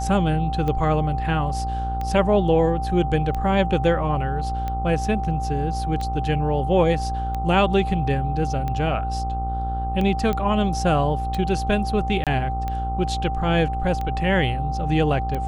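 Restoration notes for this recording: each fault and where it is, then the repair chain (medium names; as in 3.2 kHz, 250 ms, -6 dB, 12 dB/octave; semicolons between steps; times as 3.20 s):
buzz 60 Hz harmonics 23 -27 dBFS
tick 45 rpm -16 dBFS
whine 780 Hz -27 dBFS
10.33 s: pop -13 dBFS
12.24–12.27 s: dropout 27 ms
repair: de-click; de-hum 60 Hz, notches 23; band-stop 780 Hz, Q 30; interpolate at 12.24 s, 27 ms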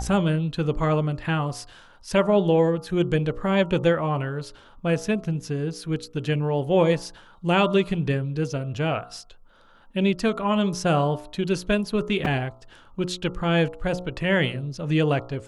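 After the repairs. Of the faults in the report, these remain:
nothing left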